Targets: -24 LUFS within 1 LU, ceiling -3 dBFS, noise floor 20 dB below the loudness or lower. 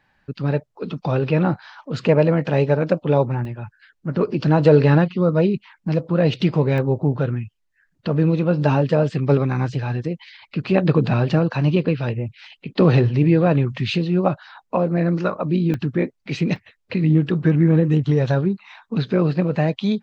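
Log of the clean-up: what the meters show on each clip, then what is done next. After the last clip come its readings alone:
dropouts 4; longest dropout 1.3 ms; loudness -20.0 LUFS; peak level -1.5 dBFS; loudness target -24.0 LUFS
-> interpolate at 3.45/6.78/15.74/16.56 s, 1.3 ms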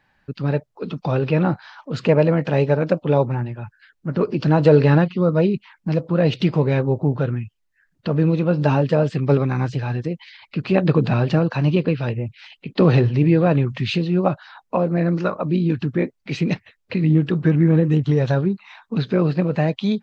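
dropouts 0; loudness -20.0 LUFS; peak level -1.5 dBFS; loudness target -24.0 LUFS
-> trim -4 dB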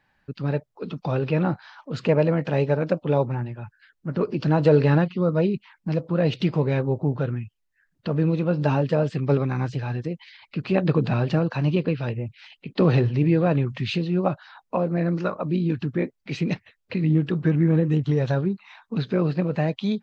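loudness -24.0 LUFS; peak level -5.5 dBFS; noise floor -73 dBFS

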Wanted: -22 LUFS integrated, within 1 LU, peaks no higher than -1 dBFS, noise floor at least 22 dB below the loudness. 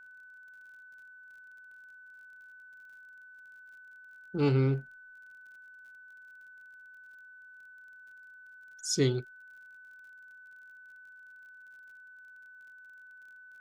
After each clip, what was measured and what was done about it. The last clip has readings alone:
tick rate 37 per s; steady tone 1.5 kHz; tone level -50 dBFS; loudness -30.0 LUFS; peak level -15.5 dBFS; loudness target -22.0 LUFS
-> de-click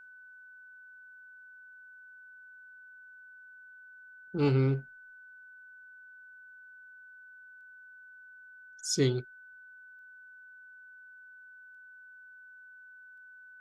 tick rate 0.15 per s; steady tone 1.5 kHz; tone level -50 dBFS
-> band-stop 1.5 kHz, Q 30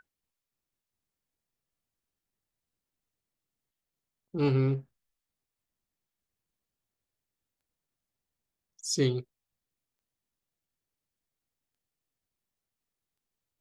steady tone not found; loudness -29.5 LUFS; peak level -15.5 dBFS; loudness target -22.0 LUFS
-> trim +7.5 dB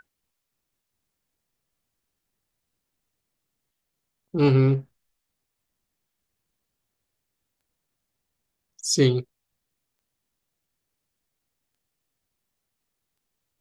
loudness -22.5 LUFS; peak level -8.0 dBFS; noise floor -81 dBFS

